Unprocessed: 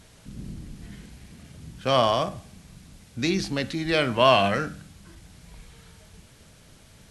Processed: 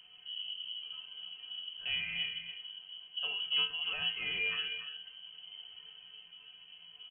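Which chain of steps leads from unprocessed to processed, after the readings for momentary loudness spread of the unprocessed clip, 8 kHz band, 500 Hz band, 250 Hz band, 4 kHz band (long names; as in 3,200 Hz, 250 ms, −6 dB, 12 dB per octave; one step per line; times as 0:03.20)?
23 LU, below −35 dB, −31.5 dB, −32.5 dB, −1.5 dB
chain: tilt shelving filter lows +5.5 dB, about 730 Hz
in parallel at −1.5 dB: downward compressor, threshold −35 dBFS, peak gain reduction 20.5 dB
on the sum: brickwall limiter −14.5 dBFS, peak gain reduction 9.5 dB
tuned comb filter 140 Hz, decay 0.29 s, harmonics odd, mix 90%
on a send: single-tap delay 285 ms −10 dB
on the sum: voice inversion scrambler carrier 3,100 Hz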